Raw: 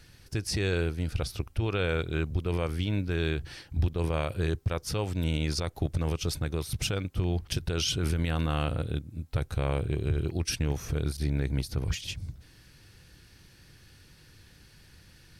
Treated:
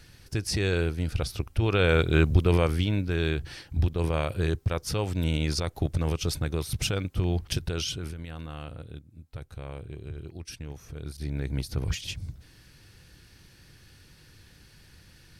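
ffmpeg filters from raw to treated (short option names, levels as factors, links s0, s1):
-af "volume=11.2,afade=t=in:st=1.46:d=0.85:silence=0.421697,afade=t=out:st=2.31:d=0.65:silence=0.421697,afade=t=out:st=7.53:d=0.61:silence=0.237137,afade=t=in:st=10.94:d=0.84:silence=0.266073"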